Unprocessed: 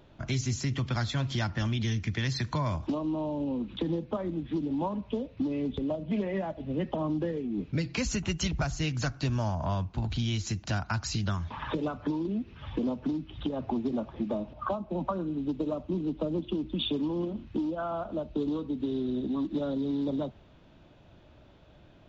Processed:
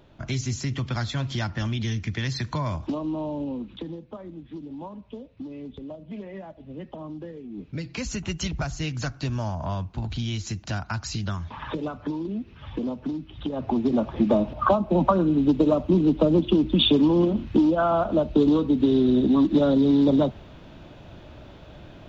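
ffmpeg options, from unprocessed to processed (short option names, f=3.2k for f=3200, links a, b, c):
-af "volume=20.5dB,afade=t=out:st=3.36:d=0.6:silence=0.354813,afade=t=in:st=7.37:d=0.98:silence=0.398107,afade=t=in:st=13.42:d=0.91:silence=0.298538"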